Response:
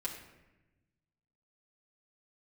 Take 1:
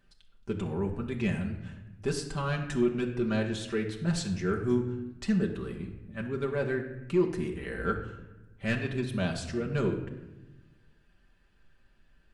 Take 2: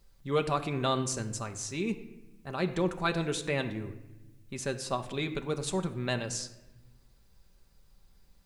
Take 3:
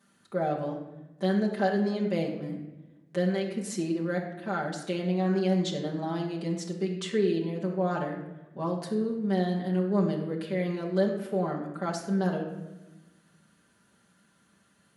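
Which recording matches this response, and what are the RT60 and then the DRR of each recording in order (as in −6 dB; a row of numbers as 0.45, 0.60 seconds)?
3; 1.0, 1.0, 1.0 seconds; 0.0, 6.0, −4.5 decibels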